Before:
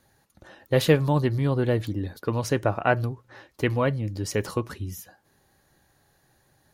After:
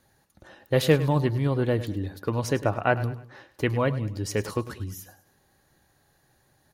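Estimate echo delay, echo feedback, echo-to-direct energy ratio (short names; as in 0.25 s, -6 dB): 0.103 s, 38%, -14.5 dB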